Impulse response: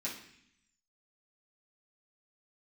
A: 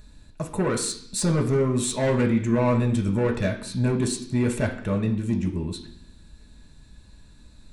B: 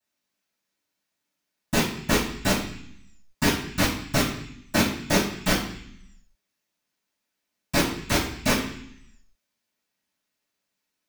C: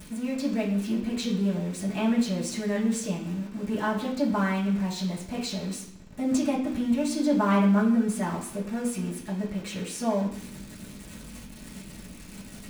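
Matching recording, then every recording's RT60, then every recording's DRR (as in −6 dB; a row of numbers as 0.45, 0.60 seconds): C; 0.65, 0.65, 0.65 seconds; 1.0, −18.0, −8.0 decibels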